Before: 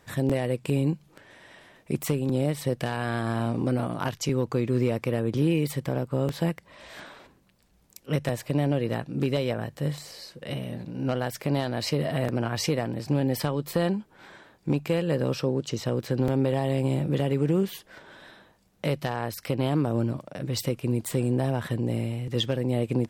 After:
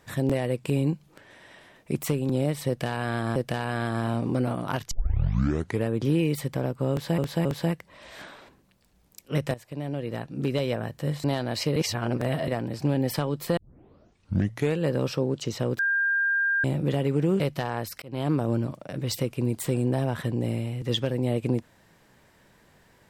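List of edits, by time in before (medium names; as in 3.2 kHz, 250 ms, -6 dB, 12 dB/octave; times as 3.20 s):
2.68–3.36 s: loop, 2 plays
4.23 s: tape start 0.96 s
6.23–6.50 s: loop, 3 plays
8.32–9.43 s: fade in, from -15 dB
10.02–11.50 s: delete
12.02–12.74 s: reverse
13.83 s: tape start 1.24 s
16.05–16.90 s: bleep 1.6 kHz -21 dBFS
17.66–18.86 s: delete
19.48–19.76 s: fade in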